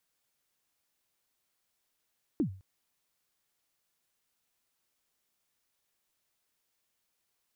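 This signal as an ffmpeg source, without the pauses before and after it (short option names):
-f lavfi -i "aevalsrc='0.0794*pow(10,-3*t/0.4)*sin(2*PI*(350*0.096/log(95/350)*(exp(log(95/350)*min(t,0.096)/0.096)-1)+95*max(t-0.096,0)))':d=0.21:s=44100"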